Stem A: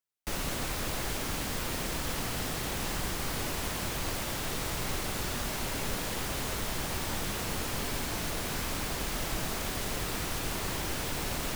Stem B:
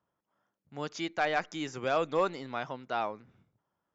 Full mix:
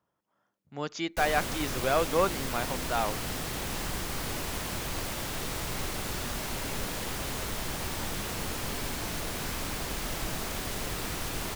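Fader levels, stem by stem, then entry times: -0.5, +2.5 dB; 0.90, 0.00 s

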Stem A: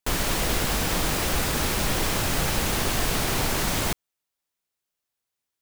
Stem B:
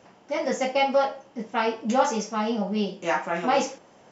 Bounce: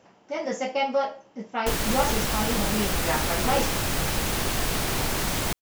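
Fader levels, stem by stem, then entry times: -1.5, -3.0 dB; 1.60, 0.00 s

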